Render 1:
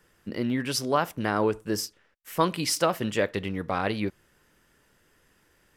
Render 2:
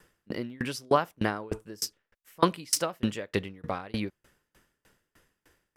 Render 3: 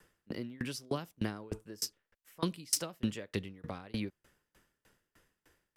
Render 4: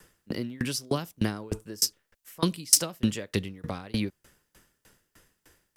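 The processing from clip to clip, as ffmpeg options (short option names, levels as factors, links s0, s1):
-af "aeval=exprs='val(0)*pow(10,-31*if(lt(mod(3.3*n/s,1),2*abs(3.3)/1000),1-mod(3.3*n/s,1)/(2*abs(3.3)/1000),(mod(3.3*n/s,1)-2*abs(3.3)/1000)/(1-2*abs(3.3)/1000))/20)':c=same,volume=1.88"
-filter_complex "[0:a]acrossover=split=330|3000[s0][s1][s2];[s1]acompressor=threshold=0.01:ratio=3[s3];[s0][s3][s2]amix=inputs=3:normalize=0,volume=0.631"
-af "bass=f=250:g=2,treble=f=4000:g=6,volume=2.11"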